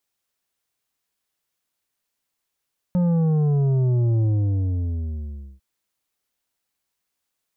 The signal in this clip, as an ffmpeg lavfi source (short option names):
-f lavfi -i "aevalsrc='0.133*clip((2.65-t)/1.38,0,1)*tanh(2.51*sin(2*PI*180*2.65/log(65/180)*(exp(log(65/180)*t/2.65)-1)))/tanh(2.51)':d=2.65:s=44100"